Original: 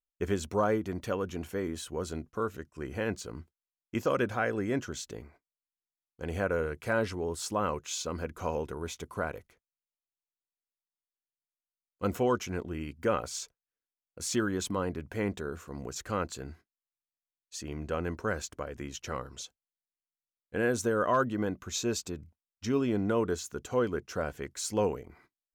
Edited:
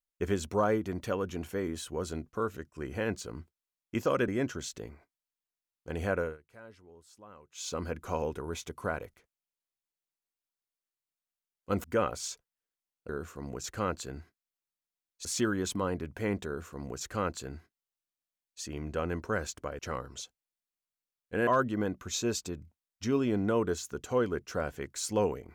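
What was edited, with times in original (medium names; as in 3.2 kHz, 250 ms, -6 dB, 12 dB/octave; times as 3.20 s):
4.28–4.61 s: delete
6.50–8.05 s: dip -22 dB, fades 0.21 s
12.17–12.95 s: delete
15.41–17.57 s: copy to 14.20 s
18.74–19.00 s: delete
20.68–21.08 s: delete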